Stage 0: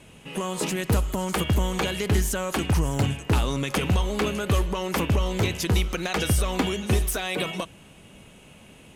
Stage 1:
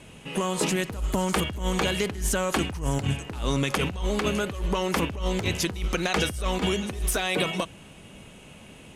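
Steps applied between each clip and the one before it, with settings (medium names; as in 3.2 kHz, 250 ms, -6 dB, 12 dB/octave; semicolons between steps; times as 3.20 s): low-pass 12 kHz 12 dB/octave; compressor with a negative ratio -25 dBFS, ratio -0.5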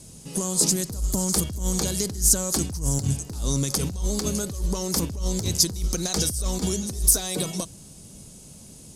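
FFT filter 150 Hz 0 dB, 2.8 kHz -17 dB, 4.8 kHz +9 dB; trim +2.5 dB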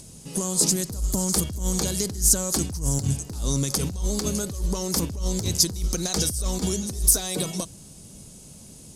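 upward compressor, threshold -44 dBFS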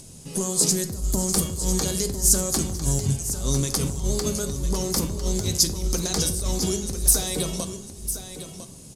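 delay 1002 ms -11 dB; on a send at -7.5 dB: reverberation RT60 0.70 s, pre-delay 8 ms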